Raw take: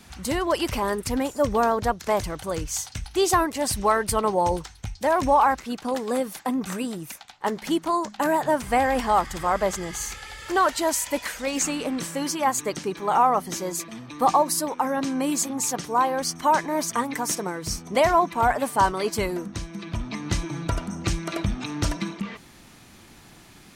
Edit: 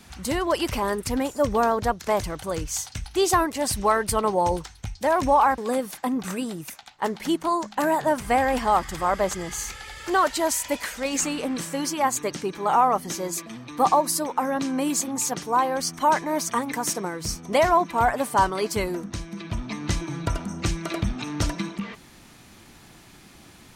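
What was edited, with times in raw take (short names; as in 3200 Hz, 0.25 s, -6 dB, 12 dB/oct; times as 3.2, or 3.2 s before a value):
5.58–6 cut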